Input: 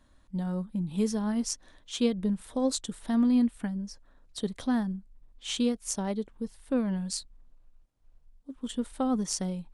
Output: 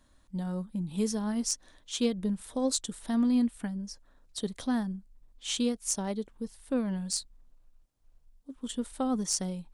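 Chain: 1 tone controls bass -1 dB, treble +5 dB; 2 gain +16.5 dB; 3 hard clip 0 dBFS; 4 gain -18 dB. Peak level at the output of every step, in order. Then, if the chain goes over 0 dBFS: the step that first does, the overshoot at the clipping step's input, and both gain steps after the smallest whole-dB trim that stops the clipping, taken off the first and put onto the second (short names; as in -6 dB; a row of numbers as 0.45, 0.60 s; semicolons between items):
-8.5, +8.0, 0.0, -18.0 dBFS; step 2, 8.0 dB; step 2 +8.5 dB, step 4 -10 dB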